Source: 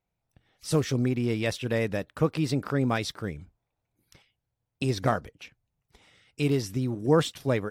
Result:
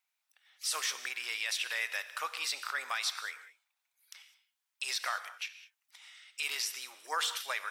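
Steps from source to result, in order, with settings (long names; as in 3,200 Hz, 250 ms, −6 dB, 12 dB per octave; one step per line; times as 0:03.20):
Bessel high-pass filter 1,700 Hz, order 4
brickwall limiter −30 dBFS, peak gain reduction 10 dB
reverb whose tail is shaped and stops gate 230 ms flat, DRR 11 dB
every ending faded ahead of time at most 530 dB per second
level +7.5 dB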